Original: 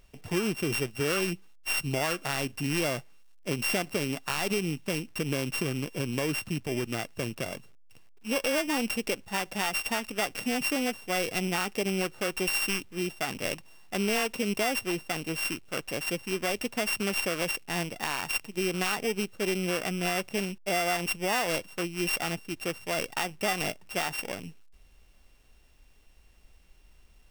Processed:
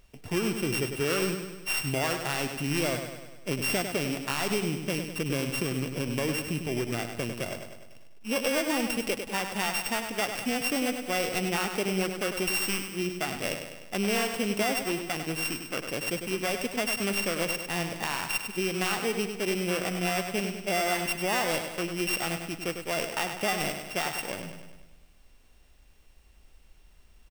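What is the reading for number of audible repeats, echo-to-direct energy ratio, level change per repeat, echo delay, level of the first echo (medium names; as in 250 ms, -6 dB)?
6, -6.0 dB, -5.0 dB, 100 ms, -7.5 dB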